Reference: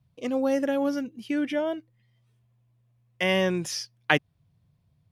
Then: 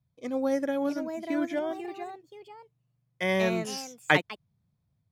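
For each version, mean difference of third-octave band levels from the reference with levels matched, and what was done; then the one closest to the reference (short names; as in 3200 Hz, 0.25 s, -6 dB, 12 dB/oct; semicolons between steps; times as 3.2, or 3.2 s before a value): 4.5 dB: Butterworth band-stop 2800 Hz, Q 5.8; echoes that change speed 0.7 s, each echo +3 st, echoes 2, each echo -6 dB; upward expander 1.5:1, over -36 dBFS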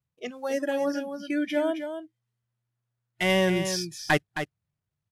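6.5 dB: CVSD 64 kbps; spectral noise reduction 20 dB; on a send: echo 0.267 s -8.5 dB; on the sum: gain +1.5 dB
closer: first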